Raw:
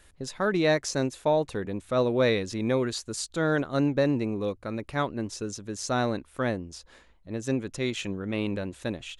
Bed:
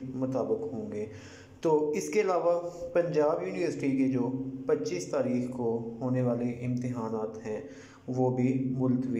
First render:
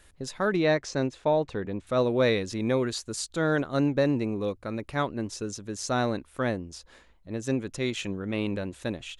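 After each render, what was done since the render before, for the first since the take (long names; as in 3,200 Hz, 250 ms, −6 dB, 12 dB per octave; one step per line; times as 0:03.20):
0:00.56–0:01.87: high-frequency loss of the air 100 metres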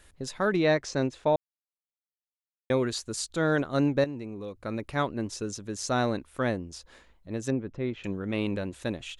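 0:01.36–0:02.70: silence
0:04.04–0:04.63: downward compressor 2 to 1, threshold −41 dBFS
0:07.50–0:08.04: head-to-tape spacing loss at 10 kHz 43 dB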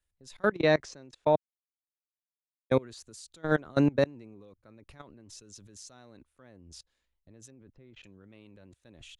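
output level in coarse steps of 24 dB
multiband upward and downward expander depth 40%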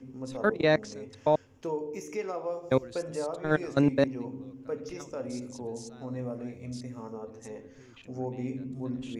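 mix in bed −7.5 dB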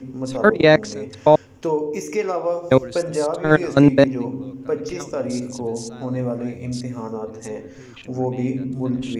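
level +11.5 dB
brickwall limiter −1 dBFS, peak gain reduction 1.5 dB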